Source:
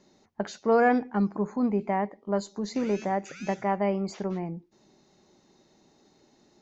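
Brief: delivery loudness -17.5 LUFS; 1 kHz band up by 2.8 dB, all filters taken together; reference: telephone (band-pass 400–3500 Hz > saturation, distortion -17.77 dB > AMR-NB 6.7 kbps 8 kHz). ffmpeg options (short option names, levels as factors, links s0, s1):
-af "highpass=400,lowpass=3500,equalizer=f=1000:t=o:g=4.5,asoftclip=threshold=0.158,volume=4.73" -ar 8000 -c:a libopencore_amrnb -b:a 6700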